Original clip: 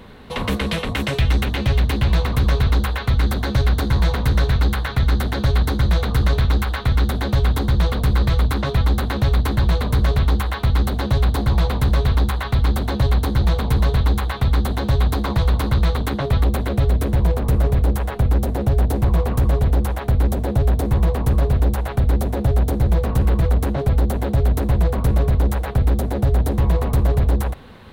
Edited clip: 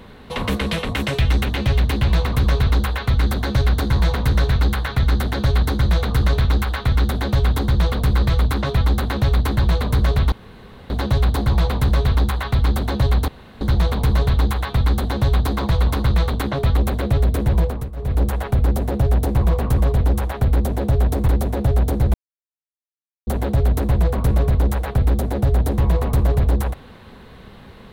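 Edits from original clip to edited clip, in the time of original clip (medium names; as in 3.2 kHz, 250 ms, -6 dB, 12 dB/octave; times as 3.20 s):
10.32–10.90 s: room tone
13.28 s: insert room tone 0.33 s
17.29–17.89 s: dip -17 dB, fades 0.28 s
20.95–22.08 s: delete
22.94–24.07 s: mute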